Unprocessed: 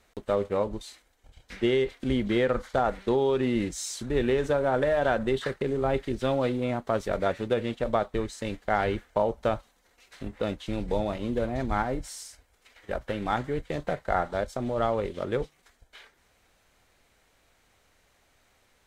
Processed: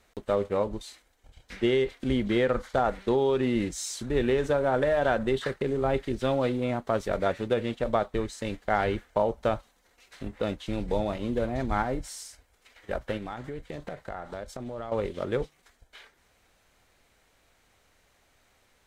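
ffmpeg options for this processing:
-filter_complex "[0:a]asettb=1/sr,asplit=3[s0][s1][s2];[s0]atrim=end=13.174[s3];[s1]atrim=start=13.17:end=14.92,asetpts=PTS-STARTPTS,afade=t=in:d=0.004:c=qsin,afade=t=out:st=1.746:d=0.004:c=qsin,acompressor=threshold=0.0224:ratio=6:attack=3.2:release=140:knee=1:detection=peak[s4];[s2]atrim=start=14.916[s5];[s3][s4]acrossfade=d=0.004:c1=hsin:c2=qsin[s6];[s6][s5]acrossfade=d=0.004:c1=qsin:c2=hsin"

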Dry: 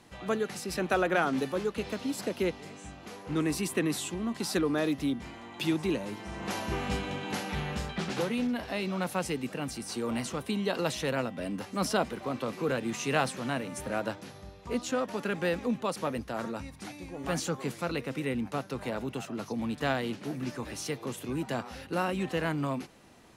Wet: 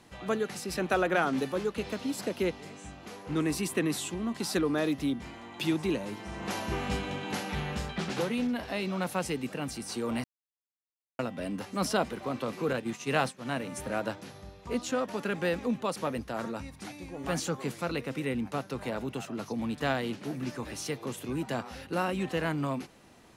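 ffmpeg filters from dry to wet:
-filter_complex "[0:a]asettb=1/sr,asplit=3[s0][s1][s2];[s0]atrim=end=12.734[s3];[s1]atrim=start=12.73:end=13.6,asetpts=PTS-STARTPTS,afade=t=in:d=0.004:c=qsin,afade=t=out:st=0.866:d=0.004:c=qsin,agate=range=0.0224:threshold=0.0282:ratio=3:release=100:detection=peak[s4];[s2]atrim=start=13.596[s5];[s3][s4]acrossfade=d=0.004:c1=hsin:c2=qsin[s6];[s6][s5]acrossfade=d=0.004:c1=qsin:c2=hsin,asplit=3[s7][s8][s9];[s7]atrim=end=10.24,asetpts=PTS-STARTPTS,afade=t=out:st=10.236:d=0.004:c=hsin[s10];[s8]atrim=start=10.24:end=11.19,asetpts=PTS-STARTPTS,volume=0[s11];[s9]atrim=start=11.19,asetpts=PTS-STARTPTS,afade=t=in:d=0.004:c=hsin[s12];[s10][s11][s12]concat=n=3:v=0:a=1"

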